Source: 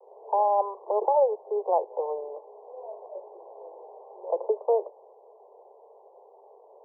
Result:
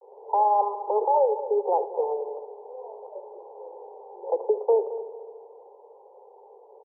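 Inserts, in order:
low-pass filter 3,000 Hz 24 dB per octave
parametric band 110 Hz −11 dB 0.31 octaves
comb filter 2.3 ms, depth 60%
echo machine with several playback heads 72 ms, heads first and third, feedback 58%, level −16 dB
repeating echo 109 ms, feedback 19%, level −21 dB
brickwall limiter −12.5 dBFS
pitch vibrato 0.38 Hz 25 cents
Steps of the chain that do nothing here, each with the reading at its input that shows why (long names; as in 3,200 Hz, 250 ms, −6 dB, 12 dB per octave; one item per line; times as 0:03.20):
low-pass filter 3,000 Hz: nothing at its input above 1,100 Hz
parametric band 110 Hz: nothing at its input below 320 Hz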